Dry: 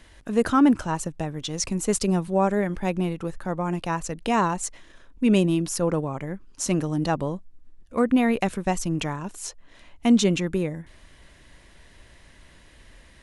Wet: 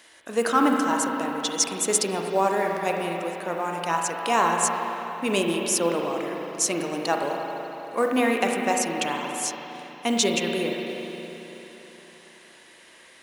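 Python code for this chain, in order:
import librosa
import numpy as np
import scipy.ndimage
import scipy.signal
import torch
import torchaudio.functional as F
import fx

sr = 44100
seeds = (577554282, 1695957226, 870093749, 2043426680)

y = scipy.signal.sosfilt(scipy.signal.butter(2, 410.0, 'highpass', fs=sr, output='sos'), x)
y = fx.high_shelf(y, sr, hz=4200.0, db=6.5)
y = fx.rev_spring(y, sr, rt60_s=3.6, pass_ms=(35, 47), chirp_ms=40, drr_db=0.5)
y = fx.mod_noise(y, sr, seeds[0], snr_db=31)
y = y * librosa.db_to_amplitude(1.0)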